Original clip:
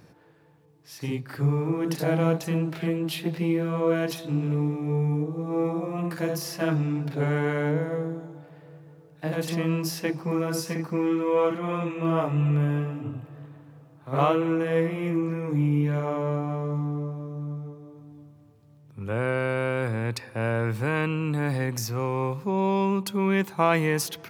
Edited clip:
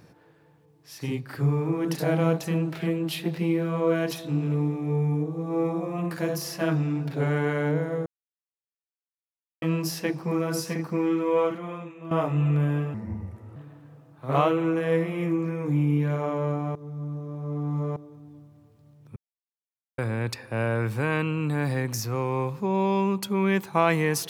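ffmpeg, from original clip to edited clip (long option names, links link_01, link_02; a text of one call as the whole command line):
ffmpeg -i in.wav -filter_complex "[0:a]asplit=10[link_01][link_02][link_03][link_04][link_05][link_06][link_07][link_08][link_09][link_10];[link_01]atrim=end=8.06,asetpts=PTS-STARTPTS,afade=type=out:start_time=8.056:duration=0.004:curve=hsin[link_11];[link_02]atrim=start=8.06:end=9.62,asetpts=PTS-STARTPTS,volume=0[link_12];[link_03]atrim=start=9.62:end=12.11,asetpts=PTS-STARTPTS,afade=type=in:duration=0.004:curve=hsin,afade=type=out:start_time=1.75:duration=0.74:curve=qua:silence=0.211349[link_13];[link_04]atrim=start=12.11:end=12.944,asetpts=PTS-STARTPTS,afade=type=in:duration=0.004:curve=hsin:silence=0.211349[link_14];[link_05]atrim=start=12.94:end=13.4,asetpts=PTS-STARTPTS,asetrate=32634,aresample=44100[link_15];[link_06]atrim=start=13.396:end=16.592[link_16];[link_07]atrim=start=16.588:end=17.802,asetpts=PTS-STARTPTS,areverse[link_17];[link_08]atrim=start=17.798:end=19,asetpts=PTS-STARTPTS,afade=type=out:start_time=1.198:duration=0.004:curve=hsin[link_18];[link_09]atrim=start=19:end=19.82,asetpts=PTS-STARTPTS,volume=0[link_19];[link_10]atrim=start=19.82,asetpts=PTS-STARTPTS,afade=type=in:duration=0.004:curve=hsin[link_20];[link_11][link_12][link_13][link_14]concat=n=4:v=0:a=1[link_21];[link_21][link_15]acrossfade=duration=0.004:curve1=hsin:curve2=hsin[link_22];[link_22][link_16]acrossfade=duration=0.004:curve1=hsin:curve2=hsin[link_23];[link_23][link_17]acrossfade=duration=0.004:curve1=hsin:curve2=hsin[link_24];[link_18][link_19][link_20]concat=n=3:v=0:a=1[link_25];[link_24][link_25]acrossfade=duration=0.004:curve1=hsin:curve2=hsin" out.wav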